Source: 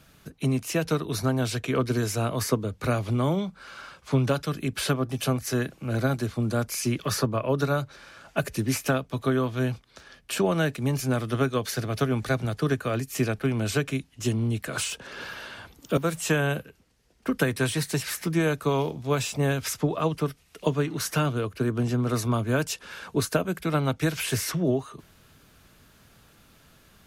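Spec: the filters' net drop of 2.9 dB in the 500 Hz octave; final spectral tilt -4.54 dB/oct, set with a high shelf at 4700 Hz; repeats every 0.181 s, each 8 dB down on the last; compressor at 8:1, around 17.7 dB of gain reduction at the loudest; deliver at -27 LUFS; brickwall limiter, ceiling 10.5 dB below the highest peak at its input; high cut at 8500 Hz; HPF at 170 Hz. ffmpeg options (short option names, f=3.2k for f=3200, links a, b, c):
-af "highpass=170,lowpass=8.5k,equalizer=f=500:t=o:g=-3.5,highshelf=f=4.7k:g=-8.5,acompressor=threshold=-41dB:ratio=8,alimiter=level_in=12.5dB:limit=-24dB:level=0:latency=1,volume=-12.5dB,aecho=1:1:181|362|543|724|905:0.398|0.159|0.0637|0.0255|0.0102,volume=19dB"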